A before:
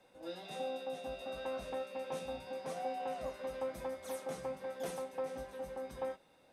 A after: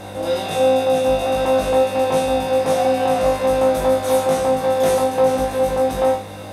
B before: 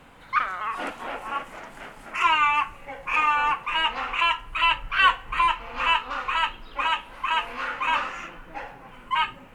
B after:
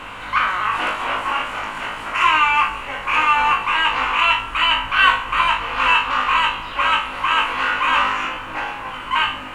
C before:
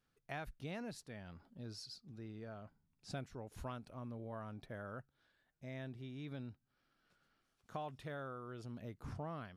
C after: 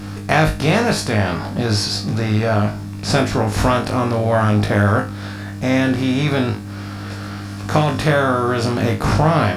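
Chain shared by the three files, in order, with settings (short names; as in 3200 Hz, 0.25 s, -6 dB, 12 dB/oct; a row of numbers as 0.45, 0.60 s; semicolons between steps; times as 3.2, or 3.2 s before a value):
per-bin compression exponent 0.6; buzz 100 Hz, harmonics 3, -58 dBFS -1 dB/oct; flutter echo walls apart 3.3 m, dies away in 0.29 s; match loudness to -18 LUFS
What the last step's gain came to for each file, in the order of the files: +16.5, +0.5, +25.0 dB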